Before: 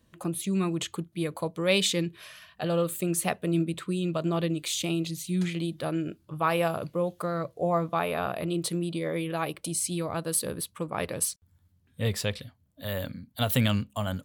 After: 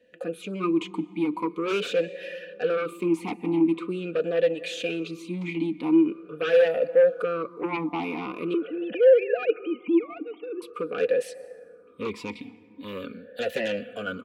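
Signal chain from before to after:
0:08.54–0:10.62: three sine waves on the formant tracks
comb filter 4.1 ms, depth 59%
dense smooth reverb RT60 3.2 s, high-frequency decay 0.3×, pre-delay 110 ms, DRR 19.5 dB
sine wavefolder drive 12 dB, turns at −10.5 dBFS
formant filter swept between two vowels e-u 0.44 Hz

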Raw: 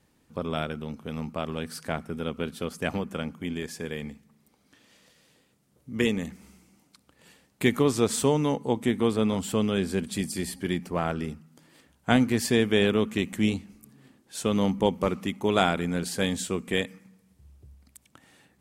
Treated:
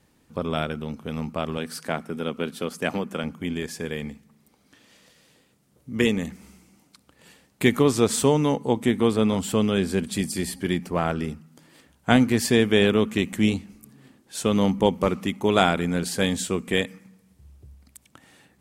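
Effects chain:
0:01.58–0:03.24: high-pass filter 160 Hz 12 dB per octave
level +3.5 dB

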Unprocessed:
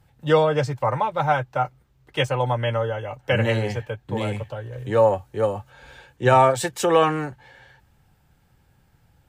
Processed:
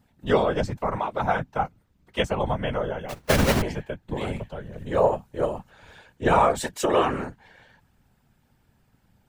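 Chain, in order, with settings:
0:03.09–0:03.62: each half-wave held at its own peak
random phases in short frames
level −3.5 dB

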